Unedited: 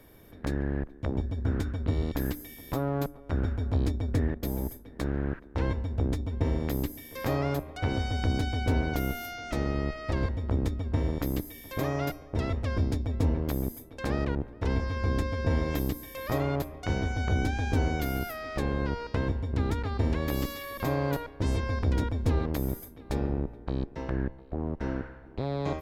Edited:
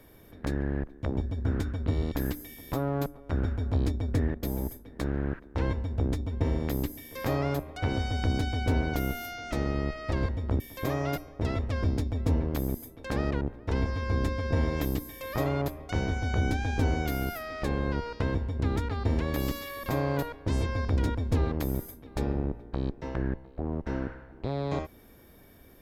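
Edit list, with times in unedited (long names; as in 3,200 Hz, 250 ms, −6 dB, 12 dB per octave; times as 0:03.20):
0:10.60–0:11.54: remove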